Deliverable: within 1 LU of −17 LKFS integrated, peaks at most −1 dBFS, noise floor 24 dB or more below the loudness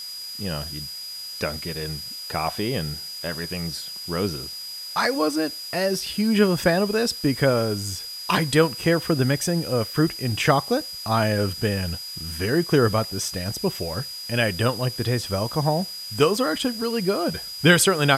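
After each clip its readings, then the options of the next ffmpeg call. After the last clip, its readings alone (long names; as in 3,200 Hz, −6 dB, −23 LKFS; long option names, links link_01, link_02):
interfering tone 4,900 Hz; level of the tone −33 dBFS; background noise floor −35 dBFS; target noise floor −48 dBFS; integrated loudness −23.5 LKFS; sample peak −3.5 dBFS; target loudness −17.0 LKFS
→ -af "bandreject=frequency=4900:width=30"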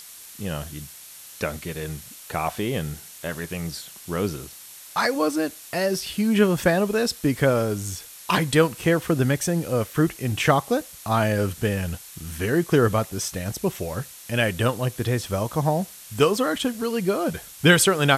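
interfering tone none found; background noise floor −44 dBFS; target noise floor −48 dBFS
→ -af "afftdn=noise_reduction=6:noise_floor=-44"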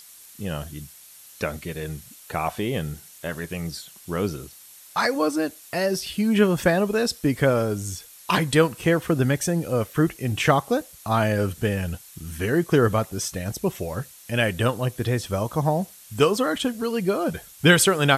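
background noise floor −47 dBFS; target noise floor −48 dBFS
→ -af "afftdn=noise_reduction=6:noise_floor=-47"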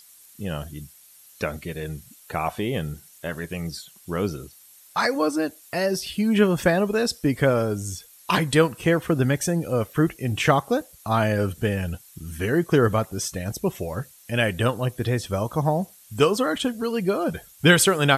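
background noise floor −51 dBFS; integrated loudness −24.0 LKFS; sample peak −3.5 dBFS; target loudness −17.0 LKFS
→ -af "volume=7dB,alimiter=limit=-1dB:level=0:latency=1"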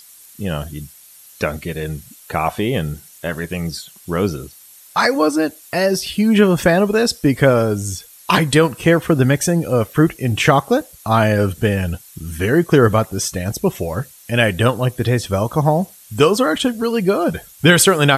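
integrated loudness −17.5 LKFS; sample peak −1.0 dBFS; background noise floor −44 dBFS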